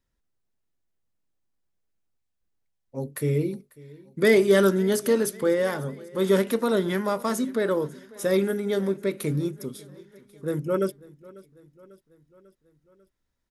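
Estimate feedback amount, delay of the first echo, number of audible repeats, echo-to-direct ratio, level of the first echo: 59%, 545 ms, 3, −20.0 dB, −22.0 dB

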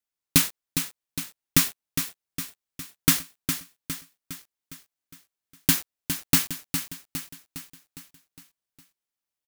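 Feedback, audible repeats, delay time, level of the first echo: 52%, 5, 409 ms, −8.0 dB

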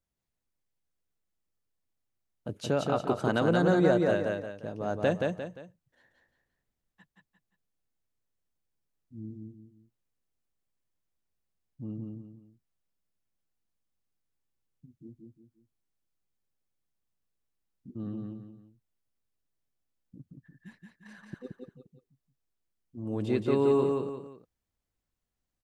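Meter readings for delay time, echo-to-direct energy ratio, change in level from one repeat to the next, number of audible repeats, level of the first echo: 175 ms, −2.5 dB, −8.5 dB, 3, −3.0 dB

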